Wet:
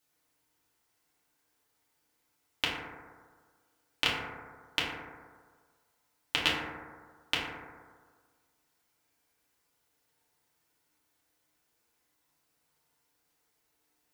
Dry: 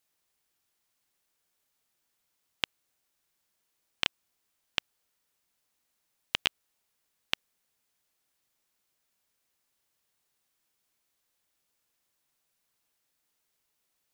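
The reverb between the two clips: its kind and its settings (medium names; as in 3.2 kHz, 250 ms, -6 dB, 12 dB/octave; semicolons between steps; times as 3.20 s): FDN reverb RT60 1.6 s, low-frequency decay 0.9×, high-frequency decay 0.25×, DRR -6.5 dB; trim -2 dB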